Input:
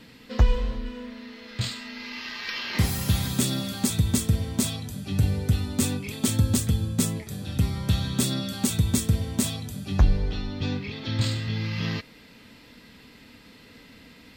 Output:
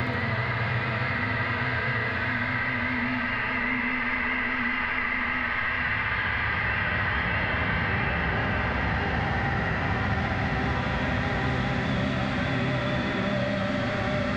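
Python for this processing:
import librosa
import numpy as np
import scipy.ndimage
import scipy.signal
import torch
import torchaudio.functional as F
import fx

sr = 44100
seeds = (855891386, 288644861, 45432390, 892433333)

p1 = scipy.signal.sosfilt(scipy.signal.butter(4, 6200.0, 'lowpass', fs=sr, output='sos'), x)
p2 = fx.low_shelf(p1, sr, hz=410.0, db=-3.5)
p3 = fx.quant_companded(p2, sr, bits=2)
p4 = p2 + (p3 * 10.0 ** (-8.0 / 20.0))
p5 = fx.filter_lfo_lowpass(p4, sr, shape='sine', hz=2.4, low_hz=590.0, high_hz=2000.0, q=4.6)
p6 = np.clip(p5, -10.0 ** (-12.0 / 20.0), 10.0 ** (-12.0 / 20.0))
p7 = fx.paulstretch(p6, sr, seeds[0], factor=6.3, window_s=1.0, from_s=1.48)
p8 = fx.vibrato(p7, sr, rate_hz=4.9, depth_cents=62.0)
p9 = p8 + fx.echo_thinned(p8, sr, ms=68, feedback_pct=77, hz=420.0, wet_db=-3.5, dry=0)
p10 = fx.band_squash(p9, sr, depth_pct=100)
y = p10 * 10.0 ** (-3.5 / 20.0)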